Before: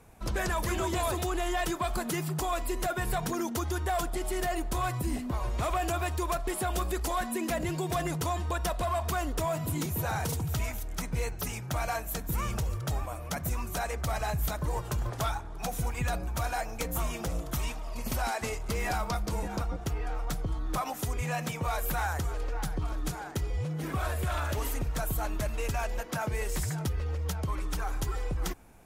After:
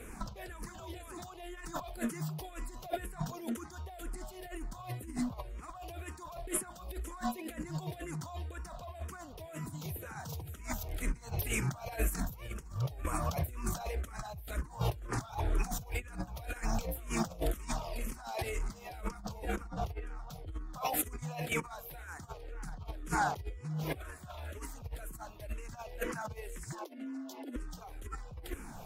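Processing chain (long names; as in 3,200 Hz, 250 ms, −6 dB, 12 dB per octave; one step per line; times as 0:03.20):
0:27.16–0:27.79: healed spectral selection 880–2,800 Hz before
compressor whose output falls as the input rises −38 dBFS, ratio −0.5
0:26.72–0:27.56: frequency shifter +190 Hz
frequency shifter mixed with the dry sound −2 Hz
level +4 dB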